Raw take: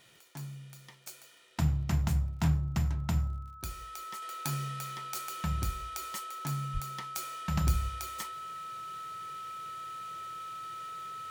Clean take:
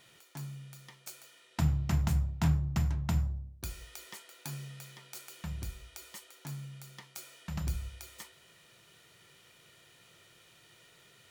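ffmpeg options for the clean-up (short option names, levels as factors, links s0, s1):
-filter_complex "[0:a]adeclick=t=4,bandreject=f=1300:w=30,asplit=3[s0][s1][s2];[s0]afade=t=out:st=6.73:d=0.02[s3];[s1]highpass=f=140:w=0.5412,highpass=f=140:w=1.3066,afade=t=in:st=6.73:d=0.02,afade=t=out:st=6.85:d=0.02[s4];[s2]afade=t=in:st=6.85:d=0.02[s5];[s3][s4][s5]amix=inputs=3:normalize=0,asetnsamples=n=441:p=0,asendcmd='4.22 volume volume -6.5dB',volume=1"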